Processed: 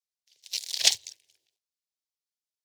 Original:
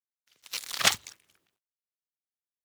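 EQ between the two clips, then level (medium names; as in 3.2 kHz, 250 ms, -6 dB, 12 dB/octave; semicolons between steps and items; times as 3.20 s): high-pass 85 Hz; peaking EQ 4.9 kHz +13 dB 1.8 oct; static phaser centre 520 Hz, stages 4; -6.5 dB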